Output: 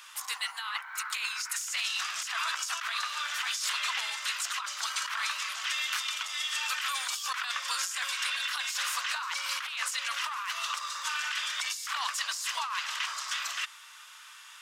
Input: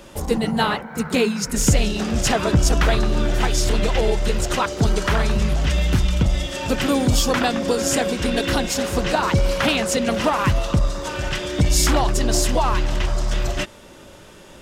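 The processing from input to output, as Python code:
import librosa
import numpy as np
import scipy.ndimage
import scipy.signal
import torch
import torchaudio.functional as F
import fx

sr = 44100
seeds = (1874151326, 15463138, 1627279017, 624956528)

y = scipy.signal.sosfilt(scipy.signal.ellip(4, 1.0, 80, 1100.0, 'highpass', fs=sr, output='sos'), x)
y = fx.over_compress(y, sr, threshold_db=-30.0, ratio=-1.0)
y = y * librosa.db_to_amplitude(-2.5)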